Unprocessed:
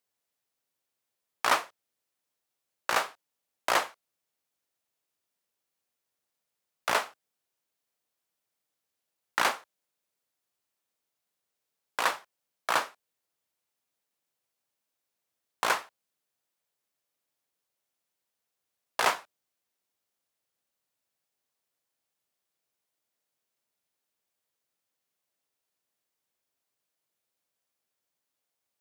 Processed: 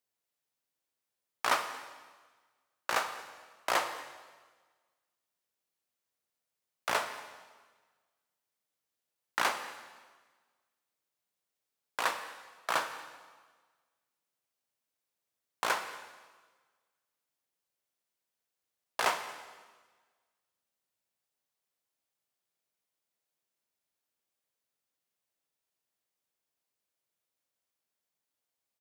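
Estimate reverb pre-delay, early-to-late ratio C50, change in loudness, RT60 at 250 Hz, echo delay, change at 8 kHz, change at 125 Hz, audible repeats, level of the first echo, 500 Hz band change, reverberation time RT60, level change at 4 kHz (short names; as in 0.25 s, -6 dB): 31 ms, 9.0 dB, -4.5 dB, 1.4 s, 0.23 s, -3.5 dB, -3.0 dB, 1, -22.0 dB, -3.5 dB, 1.4 s, -3.5 dB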